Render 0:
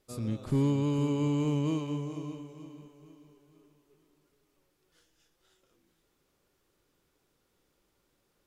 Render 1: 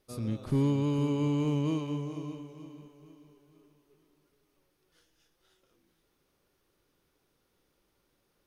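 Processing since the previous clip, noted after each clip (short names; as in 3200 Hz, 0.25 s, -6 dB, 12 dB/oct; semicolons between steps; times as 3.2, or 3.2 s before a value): notch 7400 Hz, Q 5.7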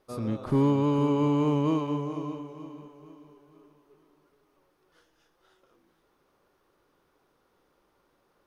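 EQ curve 110 Hz 0 dB, 1100 Hz +11 dB, 2300 Hz +2 dB, 8900 Hz -3 dB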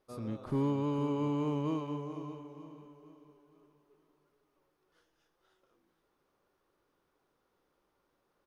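outdoor echo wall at 170 m, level -21 dB; gain -8 dB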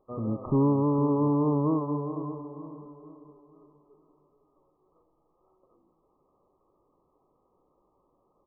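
brick-wall FIR low-pass 1300 Hz; gain +8 dB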